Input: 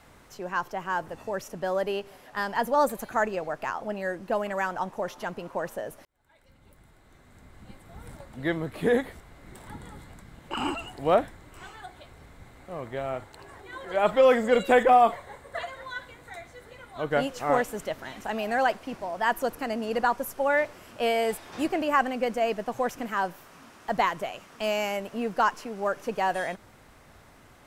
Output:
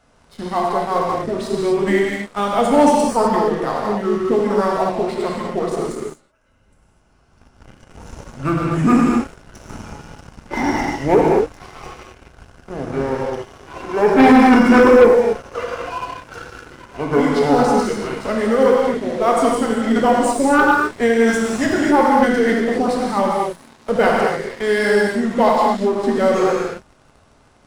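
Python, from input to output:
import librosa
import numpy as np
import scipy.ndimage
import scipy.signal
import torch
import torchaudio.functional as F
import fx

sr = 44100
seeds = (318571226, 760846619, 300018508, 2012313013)

y = fx.formant_shift(x, sr, semitones=-6)
y = fx.rev_gated(y, sr, seeds[0], gate_ms=280, shape='flat', drr_db=-3.0)
y = fx.leveller(y, sr, passes=2)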